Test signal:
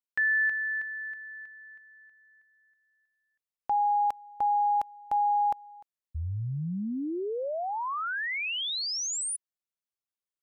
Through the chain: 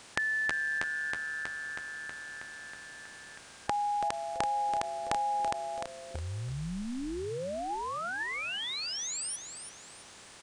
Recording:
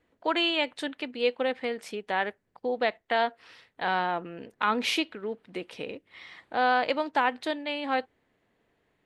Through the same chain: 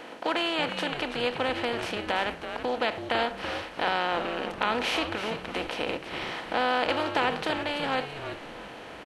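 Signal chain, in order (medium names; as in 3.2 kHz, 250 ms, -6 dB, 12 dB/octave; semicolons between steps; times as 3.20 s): spectral levelling over time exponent 0.4; frequency-shifting echo 331 ms, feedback 32%, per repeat -150 Hz, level -9 dB; endings held to a fixed fall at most 280 dB/s; trim -6 dB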